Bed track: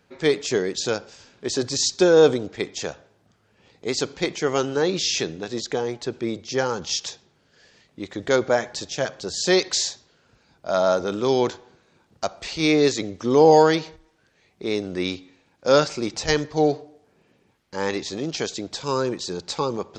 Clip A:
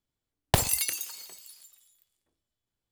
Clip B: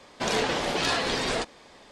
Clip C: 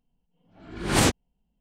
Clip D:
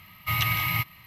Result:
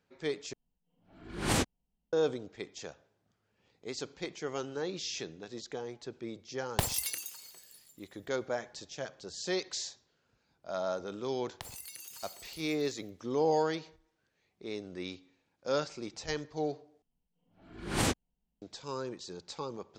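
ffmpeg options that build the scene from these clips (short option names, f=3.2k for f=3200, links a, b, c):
-filter_complex "[3:a]asplit=2[a][b];[1:a]asplit=2[c][d];[0:a]volume=-14.5dB[e];[d]acompressor=threshold=-38dB:ratio=6:attack=3.2:release=140:knee=1:detection=peak[f];[e]asplit=3[g][h][i];[g]atrim=end=0.534[j];[a]atrim=end=1.6,asetpts=PTS-STARTPTS,volume=-8.5dB[k];[h]atrim=start=2.126:end=17.024[l];[b]atrim=end=1.6,asetpts=PTS-STARTPTS,volume=-9dB[m];[i]atrim=start=18.616[n];[c]atrim=end=2.91,asetpts=PTS-STARTPTS,volume=-7dB,afade=t=in:d=0.004:c=hsin,afade=t=out:st=2.906:d=0.004:c=hsin,adelay=6250[o];[f]atrim=end=2.91,asetpts=PTS-STARTPTS,volume=-5dB,afade=t=in:d=0.004:c=hsin,afade=t=out:st=2.906:d=0.004:c=hsin,adelay=11070[p];[j][k]acrossfade=d=0.004:c1=hsin:c2=hsin[q];[q][l]acrossfade=d=0.004:c1=hsin:c2=hsin[r];[r][m]acrossfade=d=0.004:c1=hsin:c2=hsin[s];[s][n]acrossfade=d=0.004:c1=hsin:c2=hsin[t];[t][o][p]amix=inputs=3:normalize=0"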